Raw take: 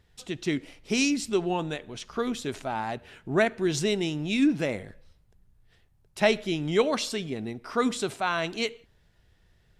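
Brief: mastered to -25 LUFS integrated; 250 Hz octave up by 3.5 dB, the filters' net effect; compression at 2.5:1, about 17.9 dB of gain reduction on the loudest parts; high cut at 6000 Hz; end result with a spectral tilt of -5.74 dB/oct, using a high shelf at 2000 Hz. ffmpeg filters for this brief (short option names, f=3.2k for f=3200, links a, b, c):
-af "lowpass=6k,equalizer=f=250:t=o:g=4.5,highshelf=f=2k:g=-9,acompressor=threshold=-44dB:ratio=2.5,volume=16.5dB"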